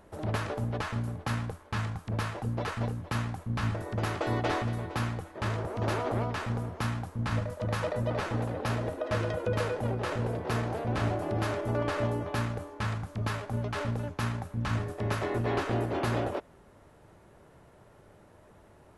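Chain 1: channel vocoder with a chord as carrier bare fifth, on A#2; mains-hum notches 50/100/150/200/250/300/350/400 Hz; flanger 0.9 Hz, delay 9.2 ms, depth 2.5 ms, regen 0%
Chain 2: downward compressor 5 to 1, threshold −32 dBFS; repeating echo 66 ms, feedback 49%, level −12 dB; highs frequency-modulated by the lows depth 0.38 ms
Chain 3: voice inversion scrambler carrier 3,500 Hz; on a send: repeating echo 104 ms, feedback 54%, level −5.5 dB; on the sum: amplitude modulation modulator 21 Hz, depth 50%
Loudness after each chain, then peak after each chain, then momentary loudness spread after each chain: −36.5, −37.0, −29.0 LKFS; −22.0, −20.5, −14.5 dBFS; 4, 3, 5 LU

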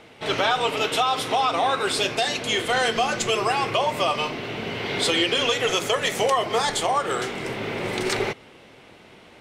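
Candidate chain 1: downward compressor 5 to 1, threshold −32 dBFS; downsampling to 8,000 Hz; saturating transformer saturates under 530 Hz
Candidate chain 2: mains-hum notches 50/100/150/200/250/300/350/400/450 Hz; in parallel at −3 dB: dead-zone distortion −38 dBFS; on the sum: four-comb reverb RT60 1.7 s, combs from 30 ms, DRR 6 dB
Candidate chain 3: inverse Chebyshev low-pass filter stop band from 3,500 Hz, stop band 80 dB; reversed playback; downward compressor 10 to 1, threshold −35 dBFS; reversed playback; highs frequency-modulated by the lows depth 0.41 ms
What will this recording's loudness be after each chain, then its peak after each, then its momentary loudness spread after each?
−34.5, −18.0, −39.5 LKFS; −20.5, −4.5, −26.5 dBFS; 6, 8, 3 LU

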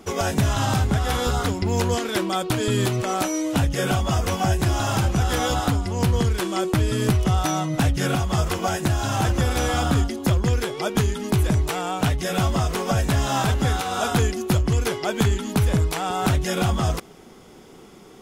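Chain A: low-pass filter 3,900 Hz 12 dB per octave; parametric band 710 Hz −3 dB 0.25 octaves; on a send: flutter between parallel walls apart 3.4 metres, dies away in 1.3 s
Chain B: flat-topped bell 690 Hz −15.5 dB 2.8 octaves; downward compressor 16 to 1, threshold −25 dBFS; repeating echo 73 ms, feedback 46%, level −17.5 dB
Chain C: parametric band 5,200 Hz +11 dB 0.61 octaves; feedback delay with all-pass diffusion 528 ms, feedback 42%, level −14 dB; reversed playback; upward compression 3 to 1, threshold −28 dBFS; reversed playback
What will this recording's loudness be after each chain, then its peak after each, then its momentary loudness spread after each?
−17.0, −30.0, −21.5 LKFS; −1.5, −14.5, −6.0 dBFS; 4, 2, 3 LU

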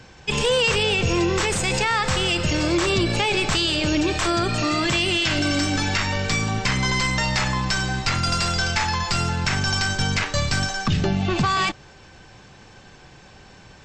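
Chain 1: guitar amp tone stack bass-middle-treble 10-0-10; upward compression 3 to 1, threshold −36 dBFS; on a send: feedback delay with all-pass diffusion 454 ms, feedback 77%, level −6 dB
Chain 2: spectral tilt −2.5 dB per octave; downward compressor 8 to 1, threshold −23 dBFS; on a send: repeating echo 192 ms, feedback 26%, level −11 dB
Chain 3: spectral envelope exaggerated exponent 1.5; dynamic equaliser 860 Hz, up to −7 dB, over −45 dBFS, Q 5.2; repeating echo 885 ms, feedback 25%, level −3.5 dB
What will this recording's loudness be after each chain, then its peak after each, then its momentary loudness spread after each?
−24.5, −28.0, −21.0 LKFS; −11.5, −13.5, −7.5 dBFS; 9, 16, 6 LU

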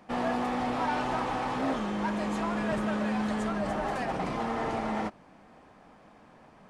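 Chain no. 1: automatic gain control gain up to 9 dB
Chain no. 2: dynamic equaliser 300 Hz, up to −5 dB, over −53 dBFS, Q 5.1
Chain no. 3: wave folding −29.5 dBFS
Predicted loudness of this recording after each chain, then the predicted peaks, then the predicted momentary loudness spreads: −22.0, −31.0, −34.5 LKFS; −11.5, −21.0, −29.5 dBFS; 3, 2, 1 LU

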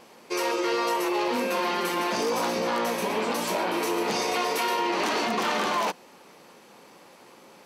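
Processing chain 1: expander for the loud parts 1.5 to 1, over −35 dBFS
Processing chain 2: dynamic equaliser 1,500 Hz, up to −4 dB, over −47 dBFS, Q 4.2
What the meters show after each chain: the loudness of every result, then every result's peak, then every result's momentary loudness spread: −27.5, −26.5 LKFS; −16.5, −16.0 dBFS; 3, 2 LU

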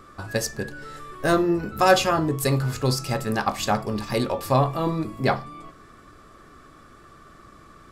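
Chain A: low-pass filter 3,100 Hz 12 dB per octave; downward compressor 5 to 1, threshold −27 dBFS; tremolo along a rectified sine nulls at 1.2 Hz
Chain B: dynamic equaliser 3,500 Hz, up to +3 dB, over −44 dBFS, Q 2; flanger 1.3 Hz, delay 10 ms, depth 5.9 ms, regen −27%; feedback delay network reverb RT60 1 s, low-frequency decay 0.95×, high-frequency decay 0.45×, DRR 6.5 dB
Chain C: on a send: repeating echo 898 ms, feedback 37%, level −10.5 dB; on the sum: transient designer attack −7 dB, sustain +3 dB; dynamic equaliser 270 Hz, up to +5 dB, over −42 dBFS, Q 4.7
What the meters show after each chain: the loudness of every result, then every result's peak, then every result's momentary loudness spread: −35.5, −26.5, −24.0 LKFS; −15.0, −7.0, −8.0 dBFS; 19, 13, 18 LU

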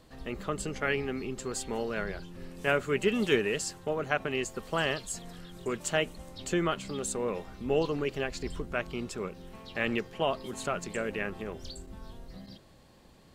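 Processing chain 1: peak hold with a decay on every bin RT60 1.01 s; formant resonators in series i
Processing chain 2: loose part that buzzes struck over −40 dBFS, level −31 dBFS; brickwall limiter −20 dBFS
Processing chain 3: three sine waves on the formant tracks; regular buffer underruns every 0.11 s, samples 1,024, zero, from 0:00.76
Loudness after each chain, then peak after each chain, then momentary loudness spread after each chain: −41.5, −34.0, −33.5 LKFS; −22.5, −20.0, −10.5 dBFS; 15, 13, 14 LU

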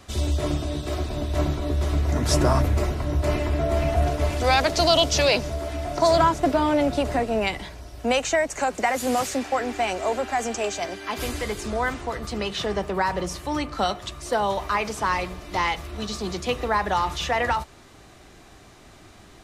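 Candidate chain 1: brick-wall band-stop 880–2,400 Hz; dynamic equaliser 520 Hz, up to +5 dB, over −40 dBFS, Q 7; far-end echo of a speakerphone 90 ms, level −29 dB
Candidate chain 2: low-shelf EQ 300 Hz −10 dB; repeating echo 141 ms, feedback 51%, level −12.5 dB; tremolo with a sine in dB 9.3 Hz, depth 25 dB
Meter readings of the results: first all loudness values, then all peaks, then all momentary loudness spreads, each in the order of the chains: −24.5, −32.0 LKFS; −7.0, −9.5 dBFS; 10, 10 LU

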